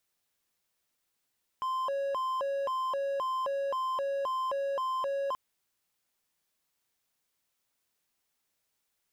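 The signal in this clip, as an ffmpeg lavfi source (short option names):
-f lavfi -i "aevalsrc='0.0447*(1-4*abs(mod((797*t+243/1.9*(0.5-abs(mod(1.9*t,1)-0.5)))+0.25,1)-0.5))':d=3.73:s=44100"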